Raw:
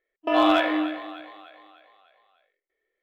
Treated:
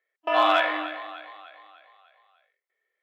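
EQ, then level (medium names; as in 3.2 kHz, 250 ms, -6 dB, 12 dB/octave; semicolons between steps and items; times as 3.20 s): high-pass 820 Hz 12 dB/octave; treble shelf 3.2 kHz -8 dB; +4.5 dB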